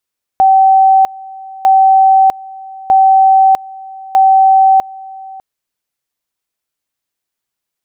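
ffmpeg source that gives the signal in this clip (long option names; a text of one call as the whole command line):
ffmpeg -f lavfi -i "aevalsrc='pow(10,(-4-22.5*gte(mod(t,1.25),0.65))/20)*sin(2*PI*769*t)':duration=5:sample_rate=44100" out.wav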